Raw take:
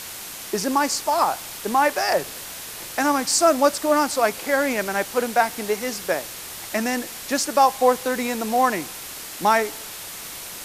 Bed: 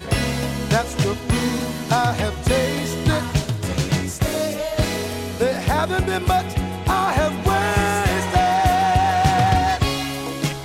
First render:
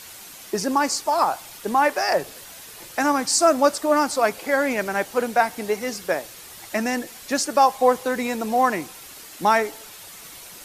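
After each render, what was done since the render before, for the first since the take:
broadband denoise 8 dB, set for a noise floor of −36 dBFS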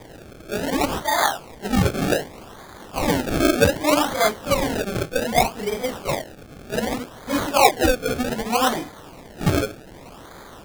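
random phases in long frames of 100 ms
sample-and-hold swept by an LFO 31×, swing 100% 0.65 Hz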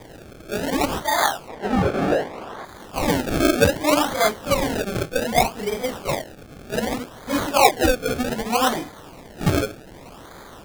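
0:01.48–0:02.65: mid-hump overdrive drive 18 dB, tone 1,100 Hz, clips at −8.5 dBFS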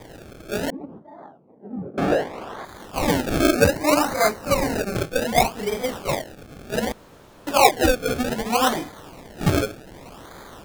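0:00.70–0:01.98: four-pole ladder band-pass 240 Hz, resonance 25%
0:03.53–0:04.96: Butterworth band-reject 3,300 Hz, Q 3.6
0:06.92–0:07.47: fill with room tone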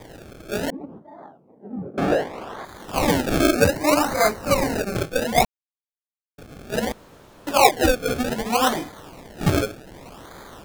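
0:02.88–0:04.64: multiband upward and downward compressor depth 40%
0:05.45–0:06.38: silence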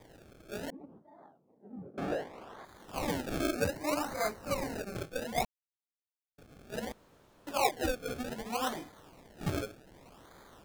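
level −14 dB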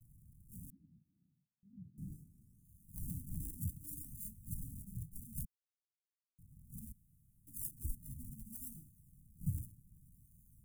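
noise gate with hold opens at −55 dBFS
inverse Chebyshev band-stop filter 490–3,600 Hz, stop band 60 dB

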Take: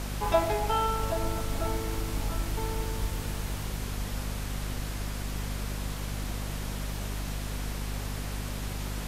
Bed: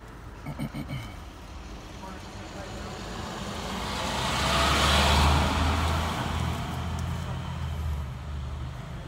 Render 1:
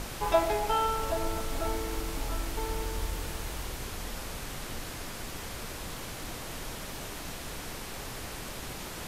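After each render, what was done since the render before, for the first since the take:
mains-hum notches 50/100/150/200/250 Hz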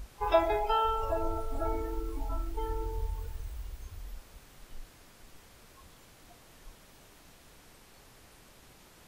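noise reduction from a noise print 17 dB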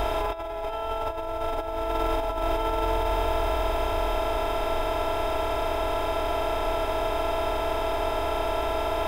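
compressor on every frequency bin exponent 0.2
compressor whose output falls as the input rises −25 dBFS, ratio −0.5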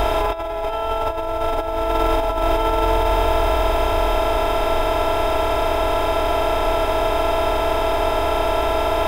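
level +7.5 dB

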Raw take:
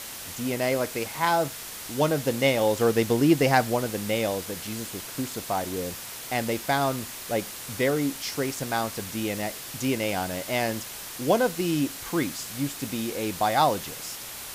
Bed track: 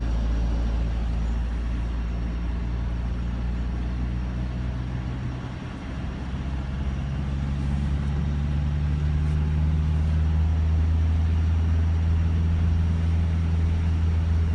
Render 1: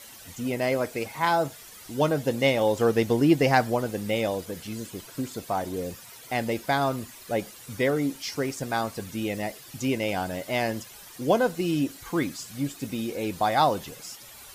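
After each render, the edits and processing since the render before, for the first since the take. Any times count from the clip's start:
broadband denoise 12 dB, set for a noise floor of −39 dBFS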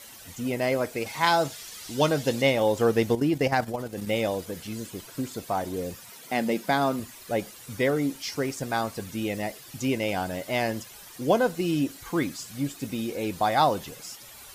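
0:01.06–0:02.42: parametric band 4,600 Hz +8 dB 2.1 octaves
0:03.15–0:04.07: output level in coarse steps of 11 dB
0:06.09–0:07.00: low shelf with overshoot 130 Hz −10.5 dB, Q 3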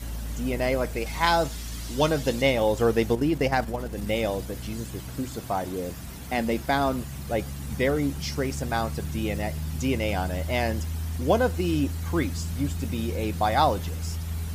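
mix in bed track −9 dB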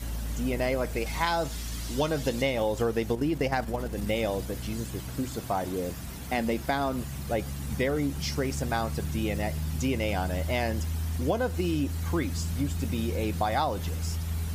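downward compressor, threshold −23 dBFS, peak gain reduction 7.5 dB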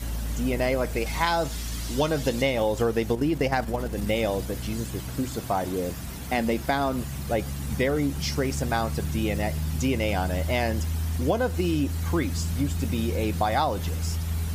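level +3 dB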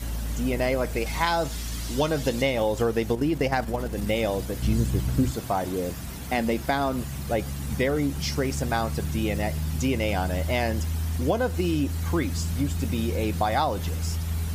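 0:04.62–0:05.31: low-shelf EQ 250 Hz +10.5 dB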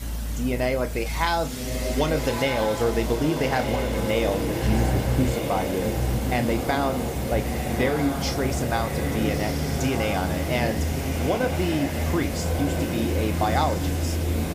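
double-tracking delay 32 ms −10.5 dB
on a send: feedback delay with all-pass diffusion 1,315 ms, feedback 60%, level −4.5 dB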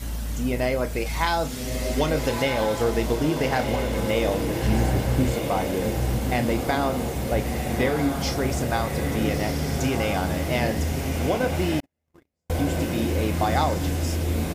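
0:11.80–0:12.50: noise gate −18 dBFS, range −56 dB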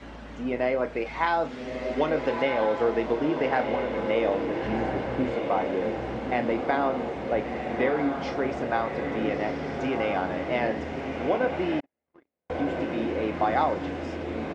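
Bessel low-pass filter 4,300 Hz, order 4
three-way crossover with the lows and the highs turned down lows −17 dB, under 230 Hz, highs −14 dB, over 2,800 Hz

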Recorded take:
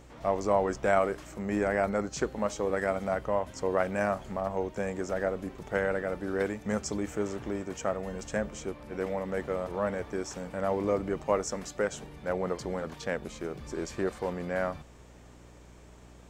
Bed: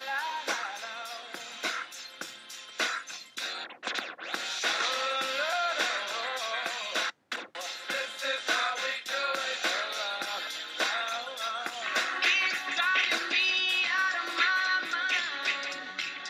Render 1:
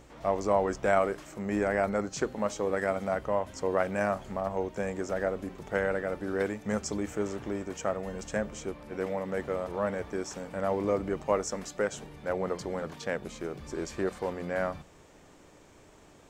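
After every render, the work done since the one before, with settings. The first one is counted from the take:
hum removal 60 Hz, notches 4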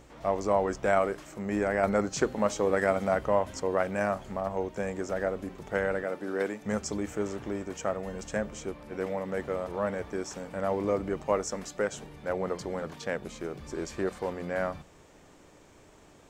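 0:01.83–0:03.60: clip gain +3.5 dB
0:06.04–0:06.62: high-pass filter 200 Hz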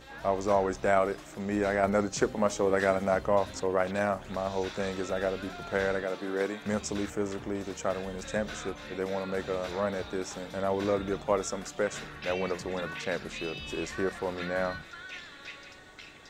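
mix in bed −14.5 dB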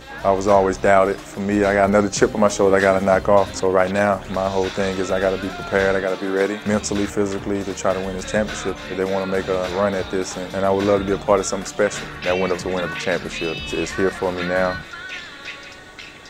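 level +11 dB
brickwall limiter −1 dBFS, peak gain reduction 2 dB

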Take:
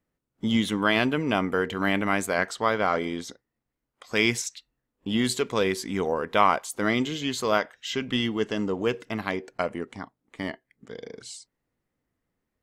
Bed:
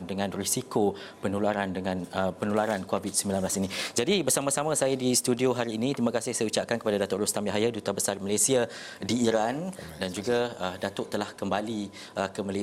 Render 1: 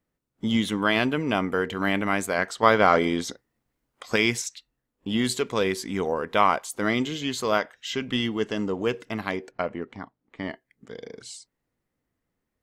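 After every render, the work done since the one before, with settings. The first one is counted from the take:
0:02.63–0:04.16: clip gain +6 dB
0:09.51–0:10.50: high-frequency loss of the air 150 metres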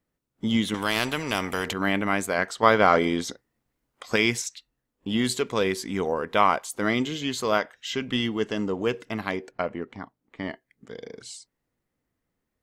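0:00.74–0:01.73: every bin compressed towards the loudest bin 2 to 1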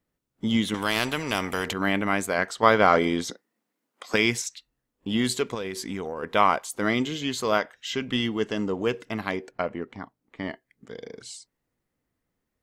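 0:03.30–0:04.14: Butterworth high-pass 180 Hz
0:05.54–0:06.23: downward compressor 12 to 1, threshold −27 dBFS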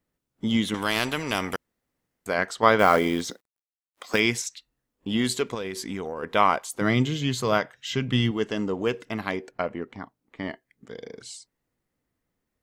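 0:01.56–0:02.26: fill with room tone
0:02.79–0:04.20: log-companded quantiser 6 bits
0:06.81–0:08.31: parametric band 130 Hz +12.5 dB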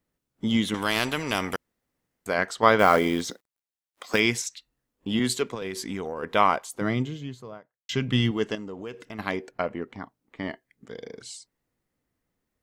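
0:05.19–0:05.62: multiband upward and downward expander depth 70%
0:06.32–0:07.89: fade out and dull
0:08.55–0:09.19: downward compressor 2.5 to 1, threshold −38 dBFS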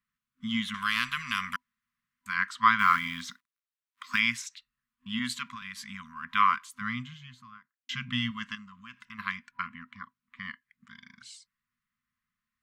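brick-wall band-stop 250–990 Hz
bass and treble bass −13 dB, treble −10 dB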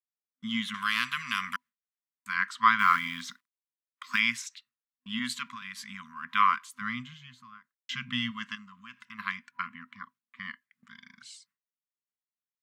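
Bessel high-pass filter 170 Hz, order 2
noise gate with hold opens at −55 dBFS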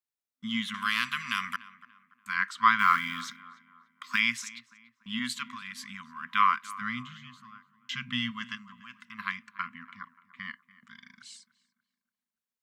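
tape delay 290 ms, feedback 47%, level −16.5 dB, low-pass 1,700 Hz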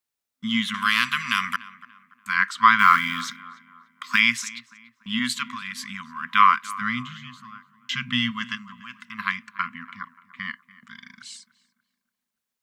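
level +7.5 dB
brickwall limiter −2 dBFS, peak gain reduction 2.5 dB

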